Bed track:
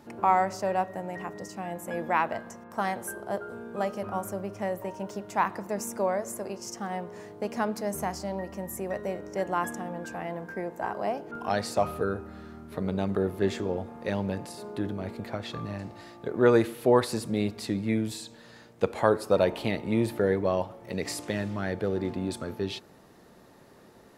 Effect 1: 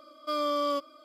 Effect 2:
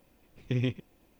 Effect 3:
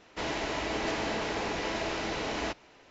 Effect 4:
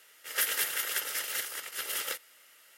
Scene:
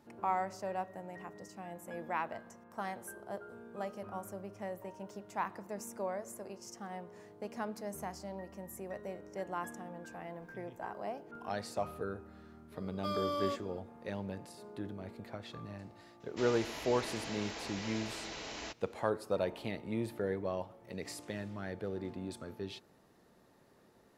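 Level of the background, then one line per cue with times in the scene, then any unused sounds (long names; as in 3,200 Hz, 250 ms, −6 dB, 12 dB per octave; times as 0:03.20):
bed track −10.5 dB
0:10.04: mix in 2 −17.5 dB + downward compressor 3 to 1, threshold −37 dBFS
0:12.76: mix in 1 −7.5 dB
0:16.20: mix in 3 −13 dB + high-shelf EQ 3,500 Hz +12 dB
not used: 4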